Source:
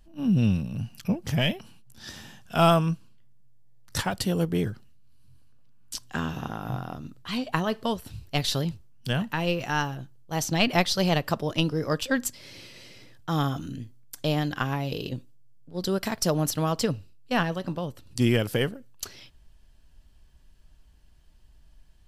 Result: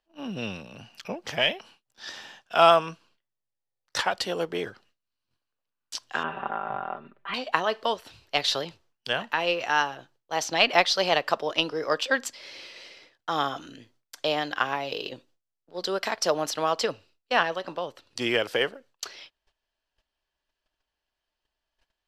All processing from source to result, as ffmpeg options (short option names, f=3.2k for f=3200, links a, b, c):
-filter_complex "[0:a]asettb=1/sr,asplit=3[a][b][c];[a]atrim=end=6.234[d];[b]atrim=start=6.23:end=7.34,asetpts=PTS-STARTPTS,afade=t=in:d=0.004:c=qsin,afade=t=out:st=1.106:d=0.004:c=qsin,lowpass=f=2.4k:w=0.5412,lowpass=f=2.4k:w=1.3066,aecho=1:1:5.1:0.78,atrim=end_sample=48951[e];[c]atrim=start=7.336[f];[d][e]acrossfade=d=0.004:c1=hsin:c2=qsin[g];[g][f]acrossfade=d=0.004:c1=qsin:c2=hsin,agate=range=-16dB:threshold=-48dB:ratio=16:detection=peak,acrossover=split=400 6000:gain=0.0631 1 0.141[h][i][j];[h][i][j]amix=inputs=3:normalize=0,volume=4.5dB"